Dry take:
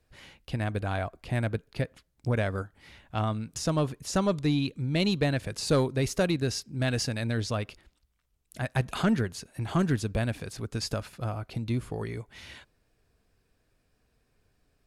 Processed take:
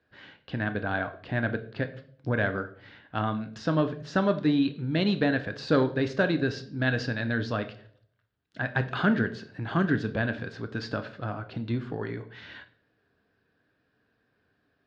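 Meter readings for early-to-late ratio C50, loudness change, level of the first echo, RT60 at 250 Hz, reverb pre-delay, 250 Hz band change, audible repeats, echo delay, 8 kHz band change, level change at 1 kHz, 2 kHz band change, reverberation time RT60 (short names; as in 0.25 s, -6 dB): 14.0 dB, +1.0 dB, none, 0.70 s, 10 ms, +2.5 dB, none, none, under -15 dB, +2.0 dB, +6.5 dB, 0.55 s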